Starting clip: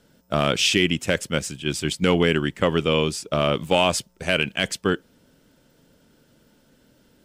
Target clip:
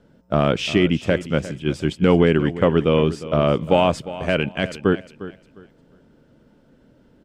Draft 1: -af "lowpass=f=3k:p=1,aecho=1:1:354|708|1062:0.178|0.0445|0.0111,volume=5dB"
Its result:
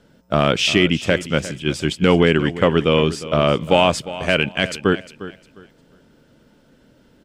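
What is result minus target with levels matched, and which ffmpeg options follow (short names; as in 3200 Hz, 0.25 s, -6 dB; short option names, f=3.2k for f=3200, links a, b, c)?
4000 Hz band +6.0 dB
-af "lowpass=f=940:p=1,aecho=1:1:354|708|1062:0.178|0.0445|0.0111,volume=5dB"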